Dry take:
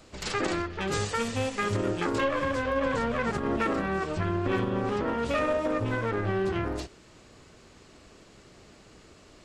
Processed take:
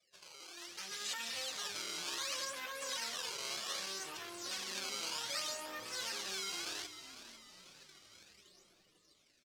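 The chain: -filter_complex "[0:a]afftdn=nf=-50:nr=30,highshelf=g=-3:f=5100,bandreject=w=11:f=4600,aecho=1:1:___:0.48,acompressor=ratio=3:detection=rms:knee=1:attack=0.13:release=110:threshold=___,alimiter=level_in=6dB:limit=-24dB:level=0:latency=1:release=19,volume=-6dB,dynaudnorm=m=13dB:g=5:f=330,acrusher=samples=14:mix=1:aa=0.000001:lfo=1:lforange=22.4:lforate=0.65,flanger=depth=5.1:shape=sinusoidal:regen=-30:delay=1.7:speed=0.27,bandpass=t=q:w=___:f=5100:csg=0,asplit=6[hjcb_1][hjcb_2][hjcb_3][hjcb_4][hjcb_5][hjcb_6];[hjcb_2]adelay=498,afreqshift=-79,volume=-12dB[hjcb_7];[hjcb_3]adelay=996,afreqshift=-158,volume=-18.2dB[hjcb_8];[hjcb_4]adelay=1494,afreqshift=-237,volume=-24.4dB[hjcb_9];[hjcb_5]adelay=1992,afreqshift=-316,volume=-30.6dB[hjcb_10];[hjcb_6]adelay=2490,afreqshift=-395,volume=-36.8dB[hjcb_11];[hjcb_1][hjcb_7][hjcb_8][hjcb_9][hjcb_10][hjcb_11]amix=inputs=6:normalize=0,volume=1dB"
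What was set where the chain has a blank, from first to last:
5.5, -29dB, 1.4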